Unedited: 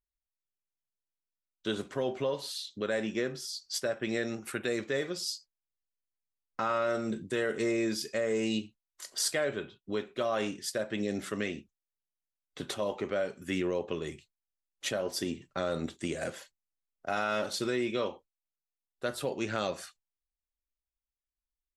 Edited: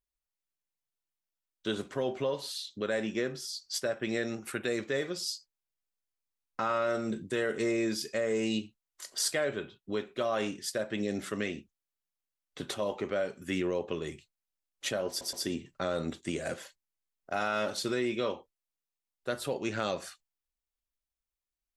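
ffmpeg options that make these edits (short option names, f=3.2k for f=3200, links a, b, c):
-filter_complex "[0:a]asplit=3[a][b][c];[a]atrim=end=15.212[d];[b]atrim=start=15.088:end=15.212[e];[c]atrim=start=15.088[f];[d][e]acrossfade=d=0.004:c1=hsin:c2=hsin[g];[g][f]acrossfade=d=0.004:c1=hsin:c2=hsin"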